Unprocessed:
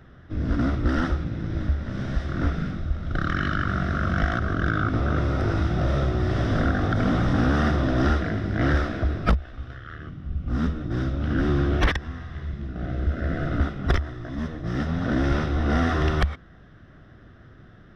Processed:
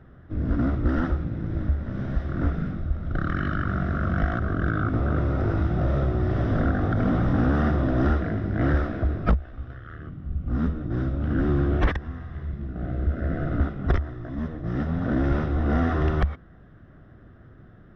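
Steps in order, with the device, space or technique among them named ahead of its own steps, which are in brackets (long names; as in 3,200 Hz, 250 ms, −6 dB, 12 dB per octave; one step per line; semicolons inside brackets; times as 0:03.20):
through cloth (high-shelf EQ 2,800 Hz −17 dB)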